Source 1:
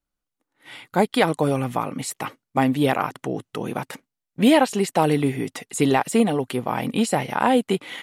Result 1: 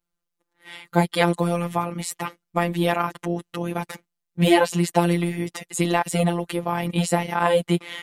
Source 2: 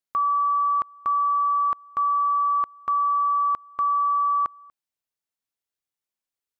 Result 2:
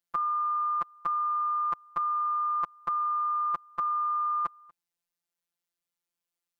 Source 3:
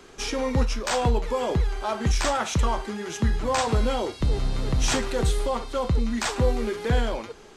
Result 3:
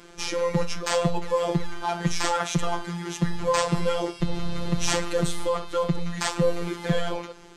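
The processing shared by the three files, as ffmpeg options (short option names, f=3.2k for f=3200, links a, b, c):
-af "afftfilt=real='hypot(re,im)*cos(PI*b)':imag='0':win_size=1024:overlap=0.75,equalizer=f=130:w=1.3:g=2.5,volume=3.5dB"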